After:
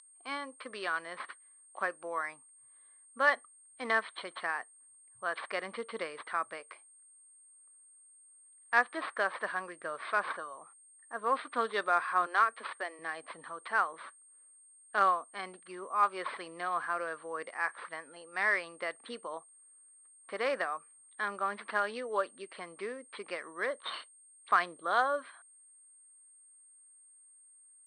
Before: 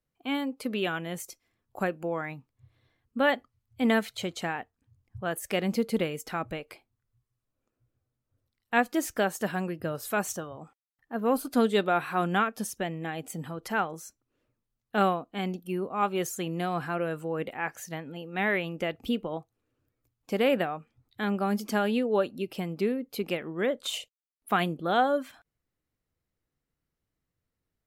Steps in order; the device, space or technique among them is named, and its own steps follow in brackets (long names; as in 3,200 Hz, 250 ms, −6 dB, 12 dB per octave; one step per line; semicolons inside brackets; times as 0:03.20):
0:12.26–0:12.99: elliptic high-pass filter 240 Hz, stop band 40 dB
toy sound module (linearly interpolated sample-rate reduction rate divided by 6×; switching amplifier with a slow clock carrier 8,600 Hz; loudspeaker in its box 760–4,700 Hz, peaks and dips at 800 Hz −6 dB, 1,100 Hz +8 dB, 1,800 Hz +4 dB, 2,700 Hz −7 dB, 4,300 Hz +6 dB)